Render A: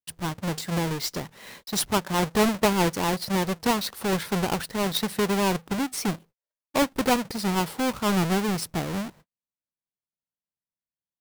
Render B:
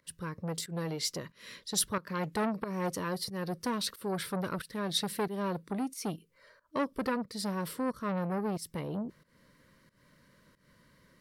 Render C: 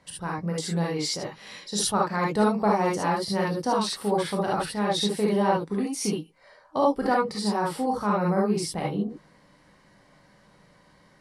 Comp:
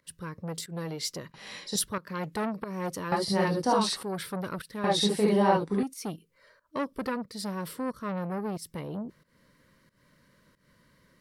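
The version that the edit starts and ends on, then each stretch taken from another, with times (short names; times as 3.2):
B
1.34–1.76 from C
3.12–4.03 from C
4.84–5.83 from C
not used: A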